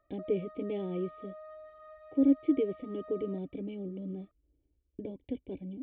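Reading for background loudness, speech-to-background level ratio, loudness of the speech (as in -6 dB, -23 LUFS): -50.0 LUFS, 16.5 dB, -33.5 LUFS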